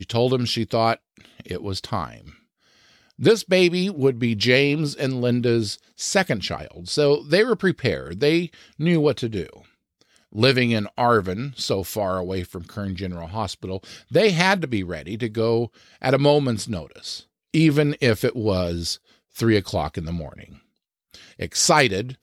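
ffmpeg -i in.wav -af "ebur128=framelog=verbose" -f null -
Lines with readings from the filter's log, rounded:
Integrated loudness:
  I:         -21.8 LUFS
  Threshold: -32.6 LUFS
Loudness range:
  LRA:         4.4 LU
  Threshold: -42.6 LUFS
  LRA low:   -25.1 LUFS
  LRA high:  -20.8 LUFS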